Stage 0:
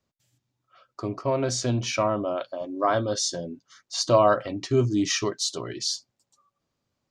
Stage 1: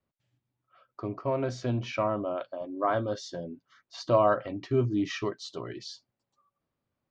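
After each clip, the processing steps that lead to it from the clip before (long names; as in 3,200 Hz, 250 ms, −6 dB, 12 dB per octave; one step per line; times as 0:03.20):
low-pass filter 2,700 Hz 12 dB per octave
level −4 dB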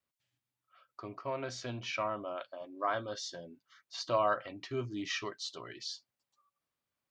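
tilt shelving filter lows −7.5 dB, about 870 Hz
level −5.5 dB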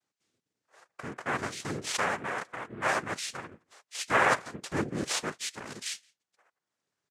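cochlear-implant simulation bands 3
transient designer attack −2 dB, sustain −6 dB
slap from a distant wall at 29 metres, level −28 dB
level +6 dB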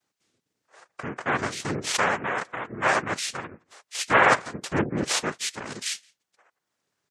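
gate on every frequency bin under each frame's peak −30 dB strong
highs frequency-modulated by the lows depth 0.3 ms
level +6 dB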